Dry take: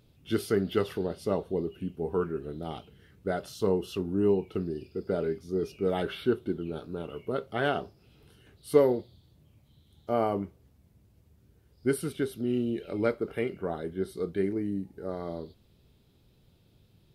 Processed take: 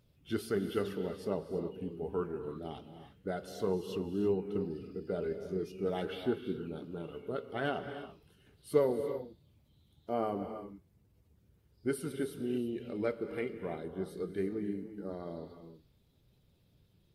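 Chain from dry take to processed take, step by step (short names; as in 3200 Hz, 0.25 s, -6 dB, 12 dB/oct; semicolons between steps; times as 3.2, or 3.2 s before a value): bin magnitudes rounded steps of 15 dB; non-linear reverb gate 0.36 s rising, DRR 8.5 dB; gain -6 dB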